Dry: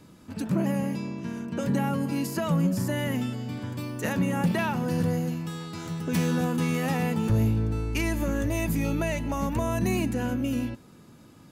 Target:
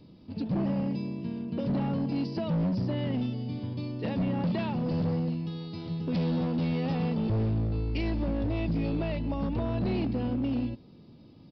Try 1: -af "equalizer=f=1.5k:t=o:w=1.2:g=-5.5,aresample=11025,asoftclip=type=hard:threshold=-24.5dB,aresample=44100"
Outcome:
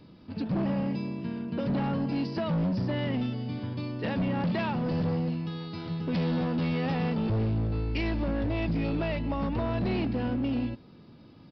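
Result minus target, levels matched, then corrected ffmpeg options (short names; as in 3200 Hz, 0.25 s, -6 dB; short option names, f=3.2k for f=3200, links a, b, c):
2000 Hz band +5.5 dB
-af "equalizer=f=1.5k:t=o:w=1.2:g=-16.5,aresample=11025,asoftclip=type=hard:threshold=-24.5dB,aresample=44100"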